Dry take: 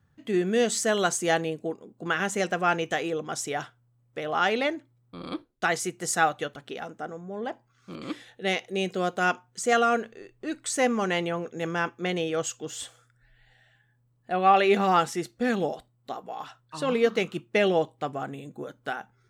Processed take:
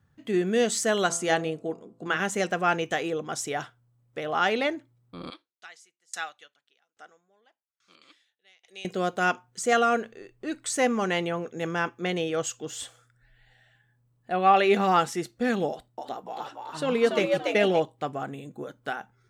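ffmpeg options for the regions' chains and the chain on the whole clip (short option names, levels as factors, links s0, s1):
-filter_complex "[0:a]asettb=1/sr,asplit=3[s0][s1][s2];[s0]atrim=end=1.064[s3];[s1]atrim=start=1.06:end=2.17,asetpts=PTS-STARTPTS,afade=t=in:d=0.004:c=qsin,afade=t=out:st=1.106:d=0.004:c=qsin,lowpass=11000,bandreject=f=56.12:t=h:w=4,bandreject=f=112.24:t=h:w=4,bandreject=f=168.36:t=h:w=4,bandreject=f=224.48:t=h:w=4,bandreject=f=280.6:t=h:w=4,bandreject=f=336.72:t=h:w=4,bandreject=f=392.84:t=h:w=4,bandreject=f=448.96:t=h:w=4,bandreject=f=505.08:t=h:w=4,bandreject=f=561.2:t=h:w=4,bandreject=f=617.32:t=h:w=4,bandreject=f=673.44:t=h:w=4,bandreject=f=729.56:t=h:w=4,bandreject=f=785.68:t=h:w=4,bandreject=f=841.8:t=h:w=4,bandreject=f=897.92:t=h:w=4,bandreject=f=954.04:t=h:w=4,bandreject=f=1010.16:t=h:w=4,bandreject=f=1066.28:t=h:w=4,bandreject=f=1122.4:t=h:w=4,bandreject=f=1178.52:t=h:w=4,bandreject=f=1234.64:t=h:w=4,bandreject=f=1290.76:t=h:w=4,bandreject=f=1346.88:t=h:w=4,bandreject=f=1403:t=h:w=4[s4];[s2]atrim=start=2.166[s5];[s3][s4]acrossfade=d=0.004:c1=hsin:c2=qsin[s6];[s6][s5]acrossfade=d=0.004:c1=qsin:c2=hsin,asettb=1/sr,asplit=3[s7][s8][s9];[s7]atrim=end=5.304[s10];[s8]atrim=start=5.3:end=8.85,asetpts=PTS-STARTPTS,afade=t=in:d=0.004:c=qsin,afade=t=out:st=3.546:d=0.004:c=qsin,bandpass=f=4300:t=q:w=0.68,aeval=exprs='val(0)*pow(10,-32*if(lt(mod(1.2*n/s,1),2*abs(1.2)/1000),1-mod(1.2*n/s,1)/(2*abs(1.2)/1000),(mod(1.2*n/s,1)-2*abs(1.2)/1000)/(1-2*abs(1.2)/1000))/20)':c=same[s11];[s9]atrim=start=8.846[s12];[s10][s11]acrossfade=d=0.004:c1=hsin:c2=qsin[s13];[s13][s12]acrossfade=d=0.004:c1=qsin:c2=hsin,asettb=1/sr,asplit=3[s14][s15][s16];[s14]atrim=end=15.694[s17];[s15]atrim=start=15.69:end=17.8,asetpts=PTS-STARTPTS,afade=t=in:d=0.004:c=qsin,afade=t=out:st=2.106:d=0.004:c=qsin,bandreject=f=1100:w=14,asplit=6[s18][s19][s20][s21][s22][s23];[s19]adelay=286,afreqshift=99,volume=0.708[s24];[s20]adelay=572,afreqshift=198,volume=0.254[s25];[s21]adelay=858,afreqshift=297,volume=0.0923[s26];[s22]adelay=1144,afreqshift=396,volume=0.0331[s27];[s23]adelay=1430,afreqshift=495,volume=0.0119[s28];[s18][s24][s25][s26][s27][s28]amix=inputs=6:normalize=0,atrim=end_sample=93051[s29];[s16]atrim=start=17.796[s30];[s17][s29]acrossfade=d=0.004:c1=hsin:c2=qsin[s31];[s31][s30]acrossfade=d=0.004:c1=qsin:c2=hsin"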